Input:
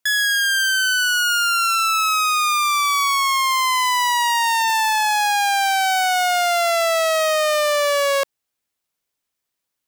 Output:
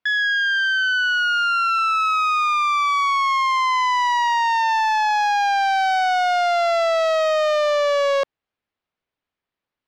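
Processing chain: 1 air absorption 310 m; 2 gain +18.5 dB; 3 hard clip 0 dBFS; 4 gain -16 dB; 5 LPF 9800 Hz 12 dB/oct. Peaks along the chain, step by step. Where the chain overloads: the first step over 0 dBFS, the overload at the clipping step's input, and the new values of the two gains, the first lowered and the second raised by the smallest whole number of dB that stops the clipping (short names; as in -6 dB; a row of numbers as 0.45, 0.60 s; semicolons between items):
-15.0, +3.5, 0.0, -16.0, -15.5 dBFS; step 2, 3.5 dB; step 2 +14.5 dB, step 4 -12 dB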